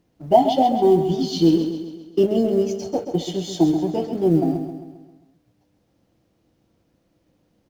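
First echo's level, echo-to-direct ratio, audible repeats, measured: -8.5 dB, -7.0 dB, 5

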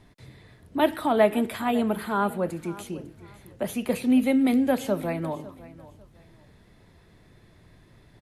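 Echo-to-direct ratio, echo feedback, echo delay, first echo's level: -18.0 dB, 27%, 0.551 s, -18.5 dB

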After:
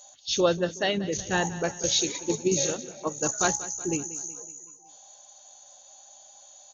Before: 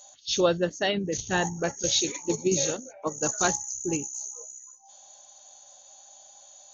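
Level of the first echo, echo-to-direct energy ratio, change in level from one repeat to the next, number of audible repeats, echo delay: -16.5 dB, -15.0 dB, -5.5 dB, 4, 0.186 s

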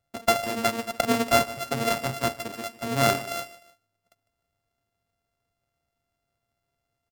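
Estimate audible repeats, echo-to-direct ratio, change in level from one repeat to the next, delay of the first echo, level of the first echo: 2, -16.5 dB, -8.5 dB, 0.152 s, -17.0 dB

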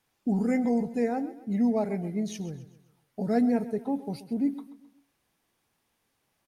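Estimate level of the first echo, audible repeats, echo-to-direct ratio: -15.5 dB, 3, -14.5 dB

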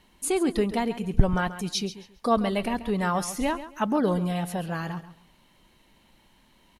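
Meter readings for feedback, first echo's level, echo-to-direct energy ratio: 23%, -13.5 dB, -13.5 dB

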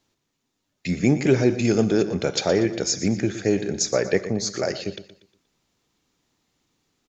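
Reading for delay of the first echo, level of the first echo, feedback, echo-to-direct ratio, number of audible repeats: 0.119 s, -13.5 dB, 37%, -13.0 dB, 3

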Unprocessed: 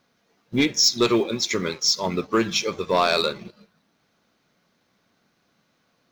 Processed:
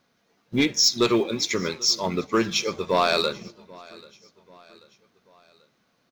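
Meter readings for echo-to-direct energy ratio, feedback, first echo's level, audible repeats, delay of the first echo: -22.5 dB, 49%, -23.5 dB, 2, 0.787 s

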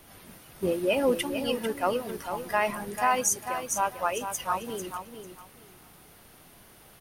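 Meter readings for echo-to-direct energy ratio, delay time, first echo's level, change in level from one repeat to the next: -8.5 dB, 0.446 s, -8.5 dB, -14.0 dB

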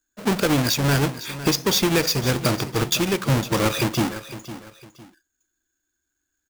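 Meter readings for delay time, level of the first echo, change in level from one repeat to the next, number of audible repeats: 0.506 s, -14.0 dB, -10.0 dB, 2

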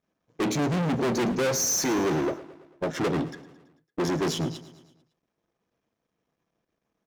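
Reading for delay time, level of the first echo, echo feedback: 0.111 s, -17.0 dB, 57%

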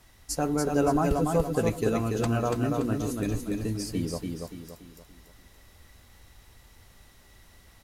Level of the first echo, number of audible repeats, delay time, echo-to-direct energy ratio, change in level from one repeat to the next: -4.0 dB, 4, 0.286 s, -3.0 dB, -8.0 dB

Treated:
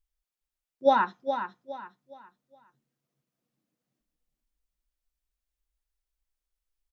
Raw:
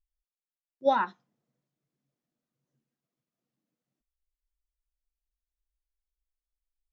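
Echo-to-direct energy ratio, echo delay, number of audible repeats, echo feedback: -8.0 dB, 0.414 s, 3, 32%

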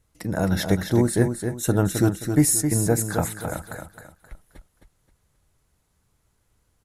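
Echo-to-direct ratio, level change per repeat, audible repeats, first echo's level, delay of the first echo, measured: -6.5 dB, -9.5 dB, 3, -7.0 dB, 0.264 s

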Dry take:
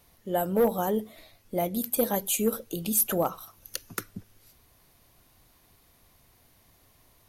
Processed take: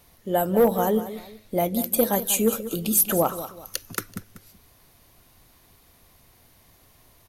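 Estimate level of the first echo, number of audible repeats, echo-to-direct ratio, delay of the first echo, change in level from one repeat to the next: -13.0 dB, 2, -12.5 dB, 0.191 s, -9.5 dB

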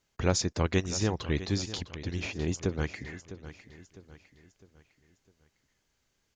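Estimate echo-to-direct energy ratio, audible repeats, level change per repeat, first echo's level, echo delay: -13.0 dB, 3, -7.5 dB, -14.0 dB, 0.655 s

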